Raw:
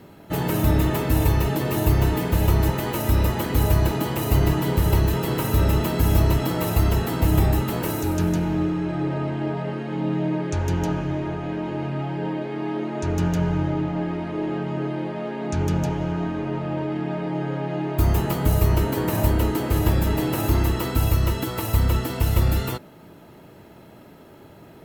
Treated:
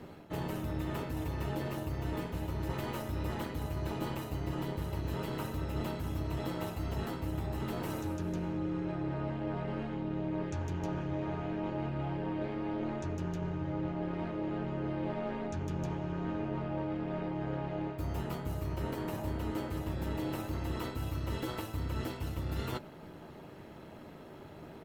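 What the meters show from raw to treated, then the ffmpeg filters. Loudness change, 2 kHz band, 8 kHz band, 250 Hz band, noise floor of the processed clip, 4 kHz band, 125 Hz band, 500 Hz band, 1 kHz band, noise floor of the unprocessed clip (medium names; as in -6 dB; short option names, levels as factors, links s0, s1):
-13.5 dB, -12.5 dB, -18.0 dB, -12.0 dB, -50 dBFS, -14.0 dB, -15.0 dB, -12.0 dB, -12.0 dB, -47 dBFS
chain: -filter_complex "[0:a]highpass=65,highshelf=f=9500:g=-11.5,areverse,acompressor=threshold=0.0316:ratio=12,areverse,tremolo=f=210:d=0.667,asplit=2[s0][s1];[s1]adelay=13,volume=0.299[s2];[s0][s2]amix=inputs=2:normalize=0"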